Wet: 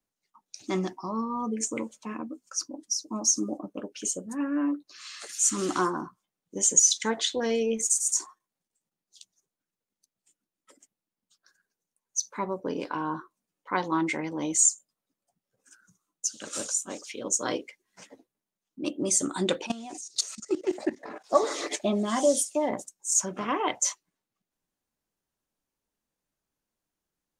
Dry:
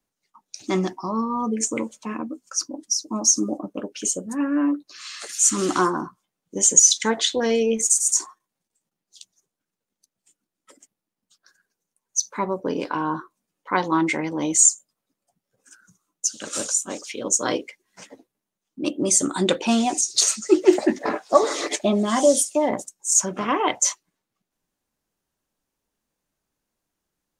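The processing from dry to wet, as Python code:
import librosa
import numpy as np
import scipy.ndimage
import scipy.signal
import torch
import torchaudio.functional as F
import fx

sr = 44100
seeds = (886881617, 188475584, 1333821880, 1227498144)

y = fx.level_steps(x, sr, step_db=17, at=(19.66, 21.24))
y = y * 10.0 ** (-6.0 / 20.0)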